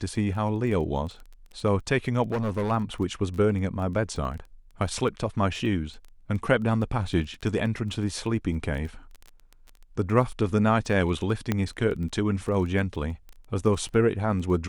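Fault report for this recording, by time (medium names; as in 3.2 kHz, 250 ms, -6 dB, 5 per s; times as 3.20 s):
crackle 13 per s -34 dBFS
2.31–2.72 s: clipped -23 dBFS
11.52 s: pop -11 dBFS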